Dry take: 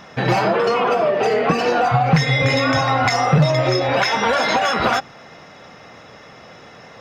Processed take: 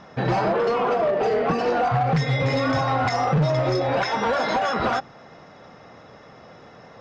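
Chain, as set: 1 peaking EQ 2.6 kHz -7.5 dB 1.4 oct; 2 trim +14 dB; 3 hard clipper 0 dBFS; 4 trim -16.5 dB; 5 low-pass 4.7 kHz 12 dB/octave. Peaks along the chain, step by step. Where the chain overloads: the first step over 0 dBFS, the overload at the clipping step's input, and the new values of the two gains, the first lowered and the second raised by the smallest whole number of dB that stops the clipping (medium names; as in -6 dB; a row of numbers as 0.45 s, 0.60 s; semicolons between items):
-4.5 dBFS, +9.5 dBFS, 0.0 dBFS, -16.5 dBFS, -16.0 dBFS; step 2, 9.5 dB; step 2 +4 dB, step 4 -6.5 dB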